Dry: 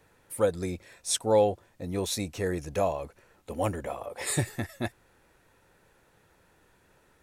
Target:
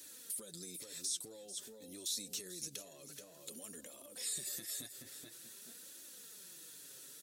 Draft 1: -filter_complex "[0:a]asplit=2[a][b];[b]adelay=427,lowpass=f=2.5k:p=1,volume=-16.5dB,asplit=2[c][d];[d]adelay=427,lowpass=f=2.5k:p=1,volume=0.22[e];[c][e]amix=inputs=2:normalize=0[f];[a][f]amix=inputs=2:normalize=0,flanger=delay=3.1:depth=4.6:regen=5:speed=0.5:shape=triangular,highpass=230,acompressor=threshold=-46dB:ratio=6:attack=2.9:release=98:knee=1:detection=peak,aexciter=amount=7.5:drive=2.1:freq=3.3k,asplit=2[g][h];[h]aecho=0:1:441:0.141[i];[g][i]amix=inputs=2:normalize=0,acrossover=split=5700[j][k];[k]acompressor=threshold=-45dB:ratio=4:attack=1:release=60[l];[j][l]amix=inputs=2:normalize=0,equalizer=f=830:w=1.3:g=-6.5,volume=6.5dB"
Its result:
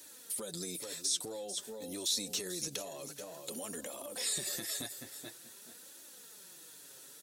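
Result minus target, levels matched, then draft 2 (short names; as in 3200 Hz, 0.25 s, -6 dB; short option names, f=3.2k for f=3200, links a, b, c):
compressor: peak gain reduction -8 dB; 1000 Hz band +6.5 dB
-filter_complex "[0:a]asplit=2[a][b];[b]adelay=427,lowpass=f=2.5k:p=1,volume=-16.5dB,asplit=2[c][d];[d]adelay=427,lowpass=f=2.5k:p=1,volume=0.22[e];[c][e]amix=inputs=2:normalize=0[f];[a][f]amix=inputs=2:normalize=0,flanger=delay=3.1:depth=4.6:regen=5:speed=0.5:shape=triangular,highpass=230,acompressor=threshold=-55.5dB:ratio=6:attack=2.9:release=98:knee=1:detection=peak,aexciter=amount=7.5:drive=2.1:freq=3.3k,asplit=2[g][h];[h]aecho=0:1:441:0.141[i];[g][i]amix=inputs=2:normalize=0,acrossover=split=5700[j][k];[k]acompressor=threshold=-45dB:ratio=4:attack=1:release=60[l];[j][l]amix=inputs=2:normalize=0,equalizer=f=830:w=1.3:g=-15,volume=6.5dB"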